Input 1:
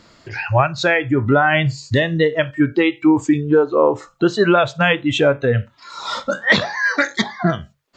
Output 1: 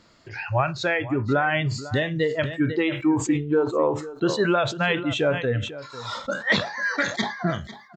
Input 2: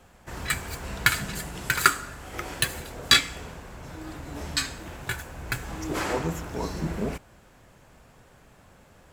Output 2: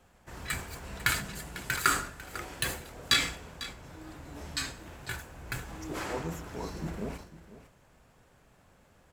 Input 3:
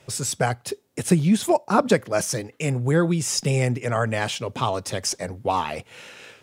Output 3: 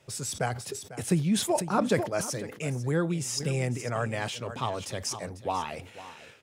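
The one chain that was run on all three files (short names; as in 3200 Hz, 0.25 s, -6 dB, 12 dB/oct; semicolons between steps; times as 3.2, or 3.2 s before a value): on a send: echo 0.498 s -15.5 dB; on the sum: sustainer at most 100 dB/s; gain -7.5 dB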